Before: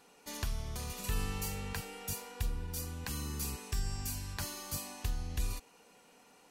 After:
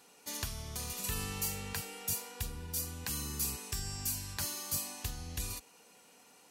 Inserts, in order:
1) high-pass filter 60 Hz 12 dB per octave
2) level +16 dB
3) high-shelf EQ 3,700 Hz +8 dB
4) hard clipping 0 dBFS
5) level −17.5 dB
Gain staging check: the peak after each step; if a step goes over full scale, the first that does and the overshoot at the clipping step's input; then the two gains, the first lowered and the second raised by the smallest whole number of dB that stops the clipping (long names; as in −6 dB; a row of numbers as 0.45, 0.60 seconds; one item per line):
−22.5, −6.5, −3.0, −3.0, −20.5 dBFS
no step passes full scale